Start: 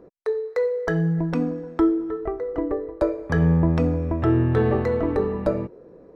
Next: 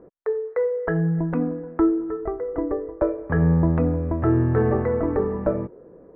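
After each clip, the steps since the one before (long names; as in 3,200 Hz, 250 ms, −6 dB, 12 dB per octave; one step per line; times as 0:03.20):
low-pass filter 1,900 Hz 24 dB per octave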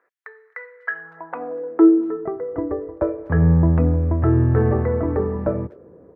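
far-end echo of a speakerphone 240 ms, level −27 dB
high-pass filter sweep 1,800 Hz → 81 Hz, 0:00.87–0:02.68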